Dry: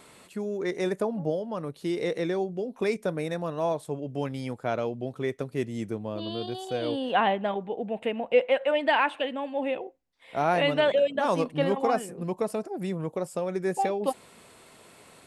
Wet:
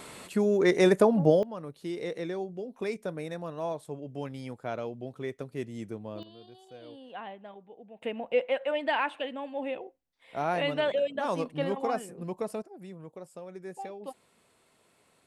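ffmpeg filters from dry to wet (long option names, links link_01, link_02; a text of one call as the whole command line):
ffmpeg -i in.wav -af "asetnsamples=nb_out_samples=441:pad=0,asendcmd='1.43 volume volume -6dB;6.23 volume volume -18dB;8.02 volume volume -5dB;12.62 volume volume -13.5dB',volume=7dB" out.wav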